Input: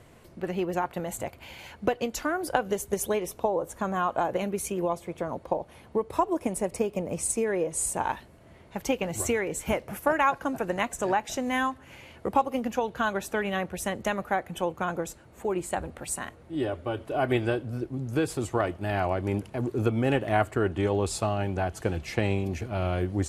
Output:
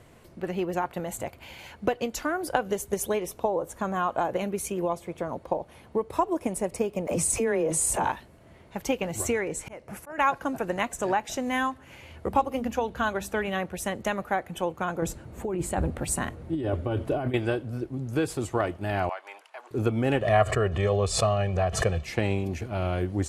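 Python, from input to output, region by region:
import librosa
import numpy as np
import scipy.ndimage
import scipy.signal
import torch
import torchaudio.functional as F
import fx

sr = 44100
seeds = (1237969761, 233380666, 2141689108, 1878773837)

y = fx.chain(x, sr, fx.dispersion(late='lows', ms=49.0, hz=340.0),
    fx.env_flatten(amount_pct=70), at=(7.07, 8.1))
y = fx.chain(y, sr, fx.lowpass(hz=11000.0, slope=24),
    fx.peak_eq(hz=3300.0, db=-4.5, octaves=0.4),
    fx.auto_swell(attack_ms=314.0), at=(9.29, 10.18))
y = fx.chain(y, sr, fx.peak_eq(hz=72.0, db=10.0, octaves=1.1),
    fx.hum_notches(base_hz=50, count=6), at=(12.03, 13.48))
y = fx.chain(y, sr, fx.low_shelf(hz=390.0, db=10.0),
    fx.over_compress(threshold_db=-27.0, ratio=-1.0), at=(15.02, 17.34))
y = fx.chain(y, sr, fx.highpass(hz=790.0, slope=24),
    fx.high_shelf(hz=6400.0, db=-11.5), at=(19.09, 19.71))
y = fx.chain(y, sr, fx.lowpass(hz=8000.0, slope=12),
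    fx.comb(ms=1.7, depth=0.81),
    fx.pre_swell(db_per_s=81.0), at=(20.21, 22.04))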